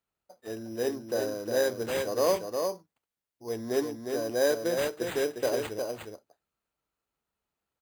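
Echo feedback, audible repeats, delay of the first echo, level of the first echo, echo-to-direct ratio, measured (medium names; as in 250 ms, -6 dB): no regular repeats, 1, 358 ms, -5.0 dB, -5.0 dB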